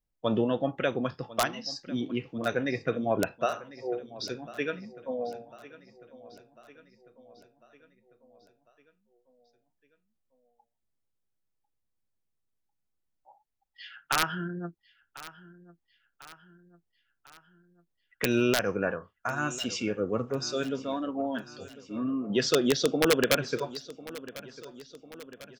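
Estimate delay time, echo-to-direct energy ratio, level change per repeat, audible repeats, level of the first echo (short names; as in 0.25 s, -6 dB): 1.048 s, -16.5 dB, -5.0 dB, 4, -18.0 dB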